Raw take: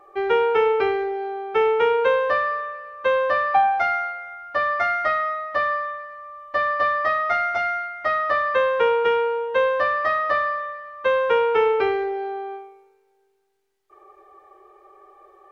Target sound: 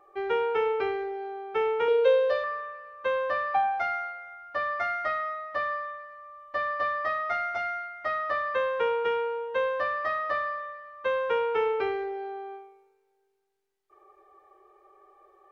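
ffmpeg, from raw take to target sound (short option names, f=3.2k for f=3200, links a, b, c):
-filter_complex "[0:a]asettb=1/sr,asplit=3[a][b][c];[a]atrim=end=1.884[d];[b]atrim=start=1.88:end=2.44,asetpts=PTS-STARTPTS,afade=t=in:d=0.004:c=qsin,afade=t=out:st=0.556:d=0.004:c=qsin,equalizer=f=125:t=o:w=1:g=-5,equalizer=f=250:t=o:w=1:g=-11,equalizer=f=500:t=o:w=1:g=11,equalizer=f=1k:t=o:w=1:g=-8,equalizer=f=2k:t=o:w=1:g=-3,equalizer=f=4k:t=o:w=1:g=8[e];[c]atrim=start=2.436[f];[d][e]acrossfade=d=0.004:c1=hsin:c2=qsin[g];[g][f]acrossfade=d=0.004:c1=qsin:c2=hsin,volume=-7.5dB"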